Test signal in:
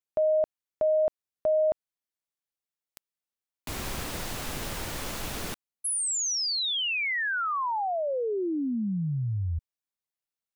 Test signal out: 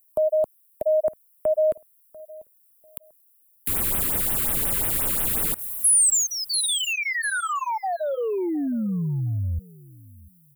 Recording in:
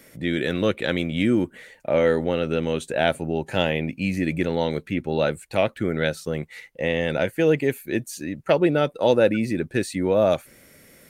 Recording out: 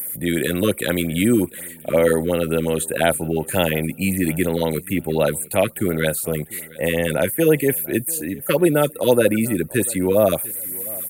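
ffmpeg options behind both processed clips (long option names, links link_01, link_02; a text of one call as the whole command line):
ffmpeg -i in.wav -filter_complex "[0:a]aecho=1:1:693|1386:0.0794|0.0199,acrossover=split=210|1300|2600[link_01][link_02][link_03][link_04];[link_04]aexciter=amount=13.3:drive=9.4:freq=8600[link_05];[link_01][link_02][link_03][link_05]amix=inputs=4:normalize=0,acrossover=split=5500[link_06][link_07];[link_07]acompressor=threshold=-27dB:ratio=4:attack=1:release=60[link_08];[link_06][link_08]amix=inputs=2:normalize=0,afftfilt=real='re*(1-between(b*sr/1024,660*pow(5900/660,0.5+0.5*sin(2*PI*5.6*pts/sr))/1.41,660*pow(5900/660,0.5+0.5*sin(2*PI*5.6*pts/sr))*1.41))':imag='im*(1-between(b*sr/1024,660*pow(5900/660,0.5+0.5*sin(2*PI*5.6*pts/sr))/1.41,660*pow(5900/660,0.5+0.5*sin(2*PI*5.6*pts/sr))*1.41))':win_size=1024:overlap=0.75,volume=3.5dB" out.wav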